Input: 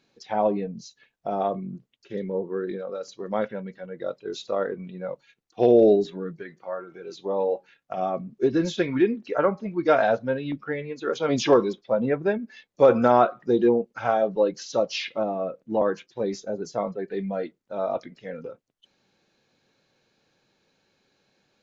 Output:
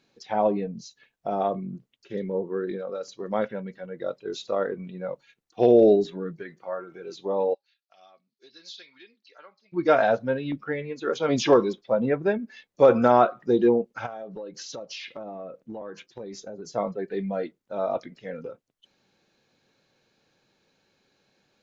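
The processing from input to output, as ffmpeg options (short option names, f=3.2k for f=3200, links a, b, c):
-filter_complex "[0:a]asplit=3[a][b][c];[a]afade=t=out:st=7.53:d=0.02[d];[b]bandpass=f=4.4k:t=q:w=4.2,afade=t=in:st=7.53:d=0.02,afade=t=out:st=9.72:d=0.02[e];[c]afade=t=in:st=9.72:d=0.02[f];[d][e][f]amix=inputs=3:normalize=0,asplit=3[g][h][i];[g]afade=t=out:st=14.05:d=0.02[j];[h]acompressor=threshold=-34dB:ratio=8:attack=3.2:release=140:knee=1:detection=peak,afade=t=in:st=14.05:d=0.02,afade=t=out:st=16.72:d=0.02[k];[i]afade=t=in:st=16.72:d=0.02[l];[j][k][l]amix=inputs=3:normalize=0"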